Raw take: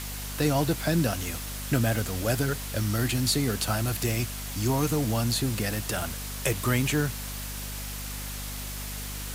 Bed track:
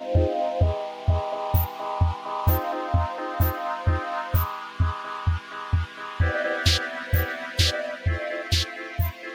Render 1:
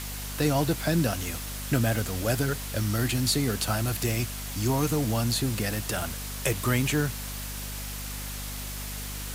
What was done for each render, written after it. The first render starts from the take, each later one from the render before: no audible change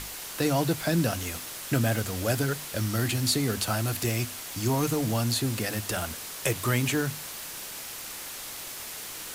hum notches 50/100/150/200/250 Hz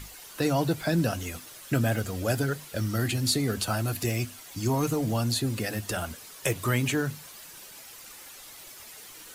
noise reduction 10 dB, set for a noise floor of -39 dBFS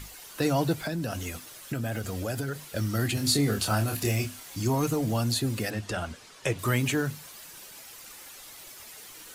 0.75–2.59 s: compression, threshold -27 dBFS; 3.14–4.63 s: doubling 28 ms -4.5 dB; 5.70–6.59 s: distance through air 68 m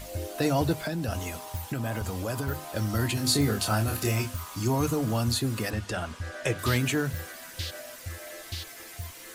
add bed track -14 dB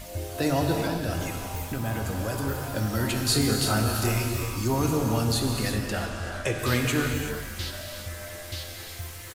frequency-shifting echo 335 ms, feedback 55%, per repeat -83 Hz, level -16 dB; gated-style reverb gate 410 ms flat, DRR 2 dB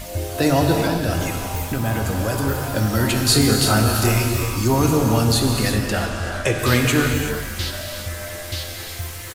trim +7.5 dB

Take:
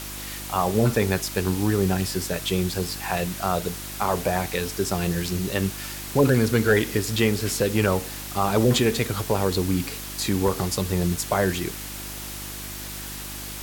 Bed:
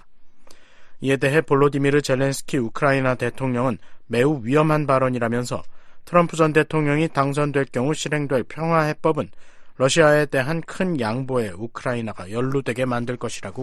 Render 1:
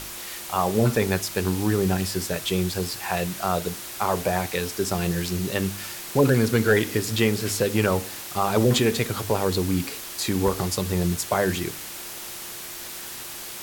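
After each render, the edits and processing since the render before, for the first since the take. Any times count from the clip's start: de-hum 50 Hz, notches 6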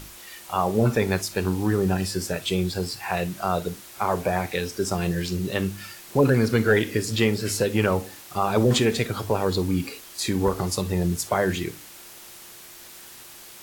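noise print and reduce 8 dB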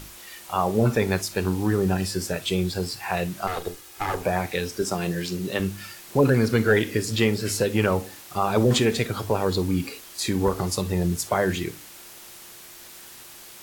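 3.47–4.23 s: comb filter that takes the minimum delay 2.4 ms; 4.82–5.60 s: high-pass 150 Hz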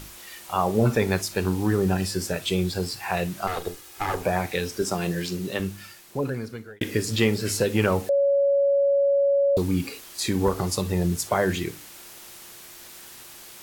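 5.24–6.81 s: fade out; 8.09–9.57 s: bleep 560 Hz -17 dBFS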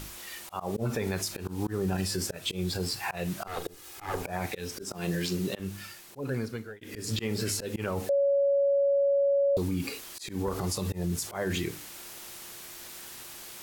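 slow attack 211 ms; peak limiter -21 dBFS, peak gain reduction 11.5 dB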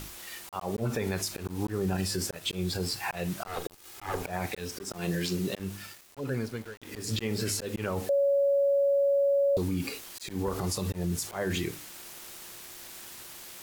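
small samples zeroed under -44.5 dBFS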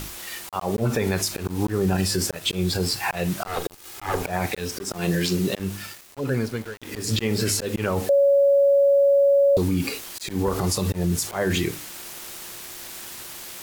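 trim +7.5 dB

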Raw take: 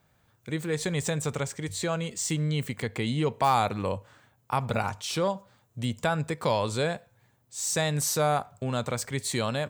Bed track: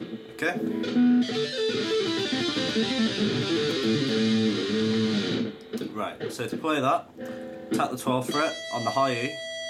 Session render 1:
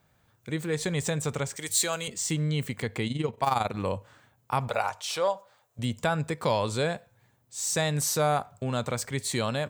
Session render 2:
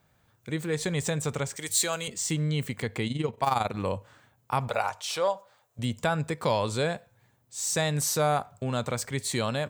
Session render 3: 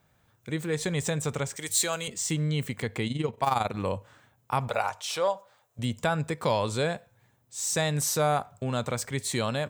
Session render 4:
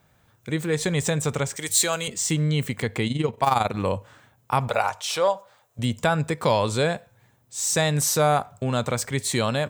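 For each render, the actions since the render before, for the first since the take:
1.56–2.08 s: RIAA curve recording; 3.07–3.77 s: AM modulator 22 Hz, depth 55%; 4.68–5.79 s: resonant low shelf 390 Hz -13 dB, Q 1.5
no audible change
band-stop 4.5 kHz, Q 20
trim +5 dB

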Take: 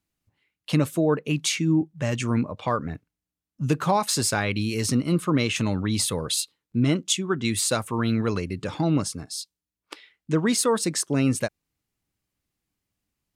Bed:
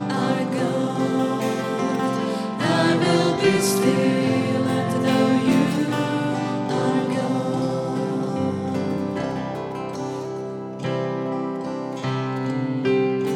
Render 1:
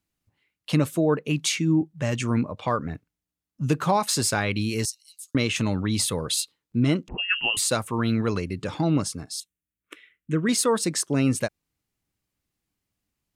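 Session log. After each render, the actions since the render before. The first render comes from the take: 4.85–5.35 s: inverse Chebyshev high-pass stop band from 890 Hz, stop band 80 dB; 7.08–7.57 s: frequency inversion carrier 3 kHz; 9.40–10.49 s: static phaser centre 2 kHz, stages 4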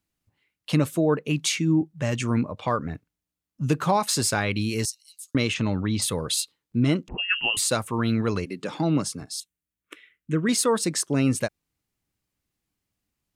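5.54–6.02 s: distance through air 120 m; 8.44–9.20 s: high-pass 220 Hz -> 100 Hz 24 dB/octave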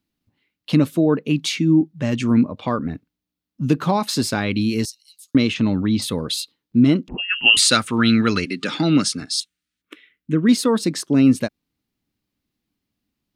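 7.46–9.82 s: time-frequency box 1.2–10 kHz +11 dB; ten-band graphic EQ 250 Hz +10 dB, 4 kHz +5 dB, 8 kHz -6 dB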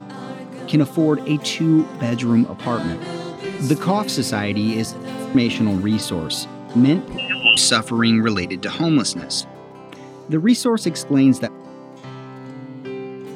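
add bed -10.5 dB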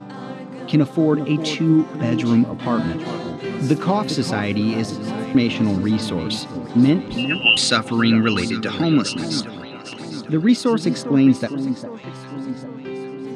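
distance through air 65 m; echo whose repeats swap between lows and highs 402 ms, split 1.3 kHz, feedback 71%, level -10.5 dB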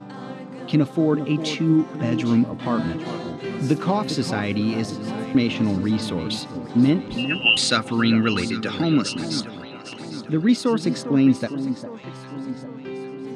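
trim -2.5 dB

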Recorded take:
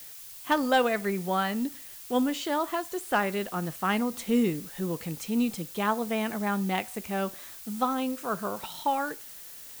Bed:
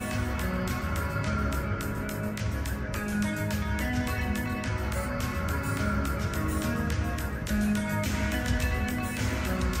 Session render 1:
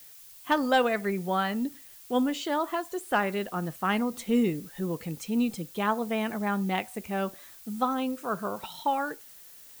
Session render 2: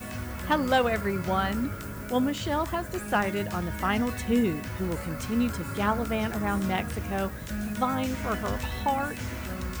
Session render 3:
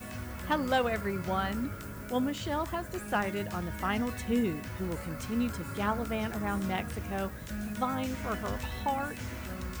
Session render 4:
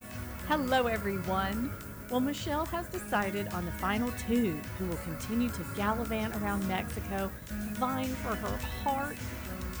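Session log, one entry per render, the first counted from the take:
noise reduction 6 dB, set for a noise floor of -45 dBFS
add bed -5.5 dB
trim -4.5 dB
expander -38 dBFS; treble shelf 10 kHz +5.5 dB

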